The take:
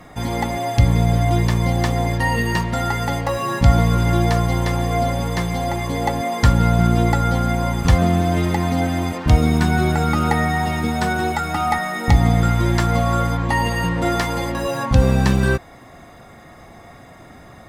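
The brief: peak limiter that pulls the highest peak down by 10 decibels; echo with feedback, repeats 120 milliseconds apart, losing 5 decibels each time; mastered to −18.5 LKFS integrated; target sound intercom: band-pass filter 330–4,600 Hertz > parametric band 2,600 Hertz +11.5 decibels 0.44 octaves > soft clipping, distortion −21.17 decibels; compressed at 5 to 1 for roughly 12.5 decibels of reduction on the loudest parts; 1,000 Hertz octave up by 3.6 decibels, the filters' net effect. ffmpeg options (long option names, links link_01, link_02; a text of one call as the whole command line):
ffmpeg -i in.wav -af "equalizer=frequency=1000:width_type=o:gain=5,acompressor=threshold=-22dB:ratio=5,alimiter=limit=-21dB:level=0:latency=1,highpass=330,lowpass=4600,equalizer=frequency=2600:width_type=o:width=0.44:gain=11.5,aecho=1:1:120|240|360|480|600|720|840:0.562|0.315|0.176|0.0988|0.0553|0.031|0.0173,asoftclip=threshold=-21dB,volume=12.5dB" out.wav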